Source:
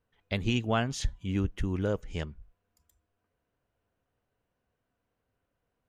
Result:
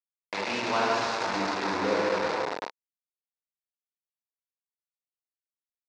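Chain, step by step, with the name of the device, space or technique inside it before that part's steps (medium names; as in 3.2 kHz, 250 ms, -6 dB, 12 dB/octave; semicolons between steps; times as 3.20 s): 1.73–2.13 s: bass shelf 420 Hz +5.5 dB; plate-style reverb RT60 3.2 s, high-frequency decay 0.95×, DRR -7.5 dB; hand-held game console (bit crusher 4-bit; cabinet simulation 420–5000 Hz, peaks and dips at 480 Hz +3 dB, 930 Hz +7 dB, 3.1 kHz -10 dB); trim -3 dB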